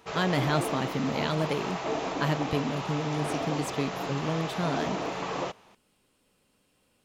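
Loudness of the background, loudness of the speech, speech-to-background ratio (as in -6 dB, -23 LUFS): -33.0 LUFS, -31.5 LUFS, 1.5 dB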